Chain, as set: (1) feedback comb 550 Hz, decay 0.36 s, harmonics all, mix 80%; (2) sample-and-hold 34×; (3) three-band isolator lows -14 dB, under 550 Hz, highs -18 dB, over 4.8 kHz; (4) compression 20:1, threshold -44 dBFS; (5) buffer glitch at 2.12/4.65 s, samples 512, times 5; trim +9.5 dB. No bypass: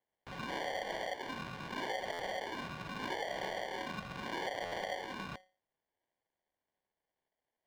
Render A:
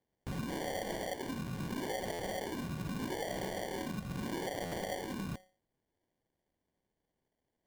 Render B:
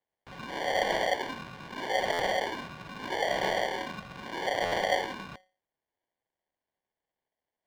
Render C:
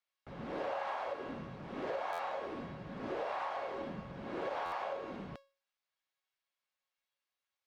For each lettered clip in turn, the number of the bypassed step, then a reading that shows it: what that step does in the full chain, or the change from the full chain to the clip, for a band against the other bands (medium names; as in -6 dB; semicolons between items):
3, 125 Hz band +9.0 dB; 4, mean gain reduction 5.5 dB; 2, 4 kHz band -11.0 dB